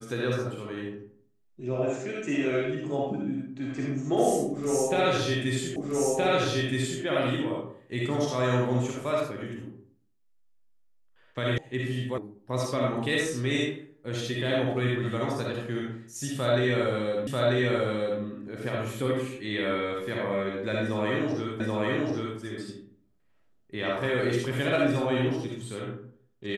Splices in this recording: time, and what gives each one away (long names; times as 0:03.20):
0:05.76: the same again, the last 1.27 s
0:11.58: cut off before it has died away
0:12.18: cut off before it has died away
0:17.27: the same again, the last 0.94 s
0:21.60: the same again, the last 0.78 s